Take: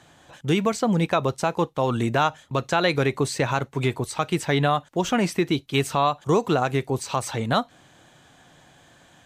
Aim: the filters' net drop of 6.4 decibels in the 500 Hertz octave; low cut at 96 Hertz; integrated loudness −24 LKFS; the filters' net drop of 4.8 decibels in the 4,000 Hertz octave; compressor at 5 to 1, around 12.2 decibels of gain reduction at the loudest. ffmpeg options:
ffmpeg -i in.wav -af "highpass=96,equalizer=frequency=500:width_type=o:gain=-8.5,equalizer=frequency=4000:width_type=o:gain=-6,acompressor=threshold=-34dB:ratio=5,volume=14dB" out.wav

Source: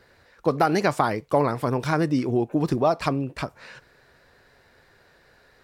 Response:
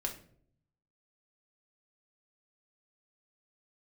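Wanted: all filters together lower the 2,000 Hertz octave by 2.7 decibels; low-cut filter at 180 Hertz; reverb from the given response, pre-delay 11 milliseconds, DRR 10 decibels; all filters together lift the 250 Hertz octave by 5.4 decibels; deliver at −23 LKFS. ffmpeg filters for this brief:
-filter_complex "[0:a]highpass=180,equalizer=frequency=250:width_type=o:gain=8,equalizer=frequency=2000:width_type=o:gain=-4,asplit=2[link_01][link_02];[1:a]atrim=start_sample=2205,adelay=11[link_03];[link_02][link_03]afir=irnorm=-1:irlink=0,volume=-11.5dB[link_04];[link_01][link_04]amix=inputs=2:normalize=0,volume=-2dB"

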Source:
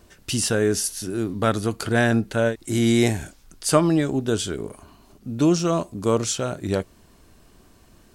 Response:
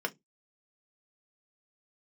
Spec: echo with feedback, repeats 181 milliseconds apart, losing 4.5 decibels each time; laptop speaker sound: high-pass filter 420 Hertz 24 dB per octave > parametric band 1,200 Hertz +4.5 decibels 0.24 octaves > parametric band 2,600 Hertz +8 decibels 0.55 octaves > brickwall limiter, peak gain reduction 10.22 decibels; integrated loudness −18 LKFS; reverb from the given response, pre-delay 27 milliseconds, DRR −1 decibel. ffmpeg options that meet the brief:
-filter_complex "[0:a]aecho=1:1:181|362|543|724|905|1086|1267|1448|1629:0.596|0.357|0.214|0.129|0.0772|0.0463|0.0278|0.0167|0.01,asplit=2[link_01][link_02];[1:a]atrim=start_sample=2205,adelay=27[link_03];[link_02][link_03]afir=irnorm=-1:irlink=0,volume=-4.5dB[link_04];[link_01][link_04]amix=inputs=2:normalize=0,highpass=frequency=420:width=0.5412,highpass=frequency=420:width=1.3066,equalizer=frequency=1200:width_type=o:width=0.24:gain=4.5,equalizer=frequency=2600:width_type=o:width=0.55:gain=8,volume=5dB,alimiter=limit=-8dB:level=0:latency=1"

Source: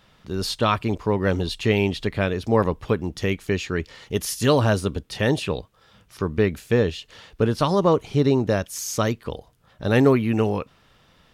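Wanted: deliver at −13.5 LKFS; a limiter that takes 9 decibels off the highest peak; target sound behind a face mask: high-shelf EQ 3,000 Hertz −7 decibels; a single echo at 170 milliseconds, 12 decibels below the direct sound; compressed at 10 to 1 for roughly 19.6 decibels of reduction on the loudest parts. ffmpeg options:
ffmpeg -i in.wav -af "acompressor=threshold=-33dB:ratio=10,alimiter=level_in=6dB:limit=-24dB:level=0:latency=1,volume=-6dB,highshelf=frequency=3000:gain=-7,aecho=1:1:170:0.251,volume=28dB" out.wav

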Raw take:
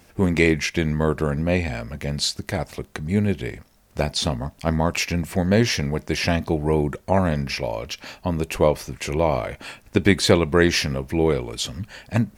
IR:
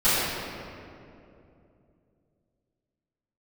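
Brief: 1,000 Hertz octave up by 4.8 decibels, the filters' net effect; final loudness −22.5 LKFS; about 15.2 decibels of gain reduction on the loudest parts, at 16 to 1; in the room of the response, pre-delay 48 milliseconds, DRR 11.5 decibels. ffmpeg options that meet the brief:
-filter_complex "[0:a]equalizer=frequency=1000:width_type=o:gain=6,acompressor=threshold=-25dB:ratio=16,asplit=2[link_01][link_02];[1:a]atrim=start_sample=2205,adelay=48[link_03];[link_02][link_03]afir=irnorm=-1:irlink=0,volume=-30dB[link_04];[link_01][link_04]amix=inputs=2:normalize=0,volume=8dB"

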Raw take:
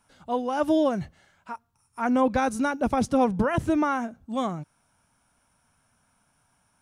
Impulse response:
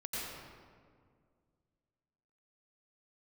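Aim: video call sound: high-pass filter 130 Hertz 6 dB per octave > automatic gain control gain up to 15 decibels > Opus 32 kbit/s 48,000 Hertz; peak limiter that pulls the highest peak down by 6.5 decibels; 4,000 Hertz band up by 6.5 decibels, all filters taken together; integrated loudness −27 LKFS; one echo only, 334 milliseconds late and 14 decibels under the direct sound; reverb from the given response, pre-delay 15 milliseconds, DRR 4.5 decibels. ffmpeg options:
-filter_complex "[0:a]equalizer=frequency=4000:width_type=o:gain=8.5,alimiter=limit=-17.5dB:level=0:latency=1,aecho=1:1:334:0.2,asplit=2[link_01][link_02];[1:a]atrim=start_sample=2205,adelay=15[link_03];[link_02][link_03]afir=irnorm=-1:irlink=0,volume=-7dB[link_04];[link_01][link_04]amix=inputs=2:normalize=0,highpass=frequency=130:poles=1,dynaudnorm=maxgain=15dB" -ar 48000 -c:a libopus -b:a 32k

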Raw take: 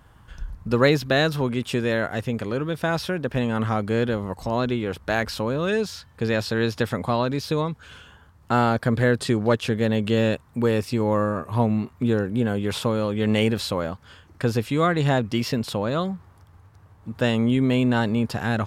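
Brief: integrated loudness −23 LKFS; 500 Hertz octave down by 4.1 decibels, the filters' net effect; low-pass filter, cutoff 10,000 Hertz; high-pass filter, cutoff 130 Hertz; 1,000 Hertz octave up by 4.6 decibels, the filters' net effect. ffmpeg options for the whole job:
ffmpeg -i in.wav -af "highpass=130,lowpass=10000,equalizer=frequency=500:width_type=o:gain=-7,equalizer=frequency=1000:width_type=o:gain=8,volume=1.5dB" out.wav

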